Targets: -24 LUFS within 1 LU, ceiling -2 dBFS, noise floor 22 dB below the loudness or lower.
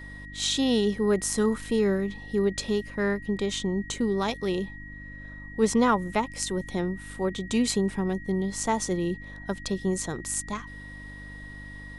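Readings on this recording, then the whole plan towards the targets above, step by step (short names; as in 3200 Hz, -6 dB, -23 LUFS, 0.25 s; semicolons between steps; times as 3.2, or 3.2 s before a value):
hum 50 Hz; harmonics up to 300 Hz; hum level -42 dBFS; steady tone 1900 Hz; tone level -43 dBFS; loudness -27.5 LUFS; peak -10.0 dBFS; loudness target -24.0 LUFS
-> de-hum 50 Hz, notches 6; notch 1900 Hz, Q 30; gain +3.5 dB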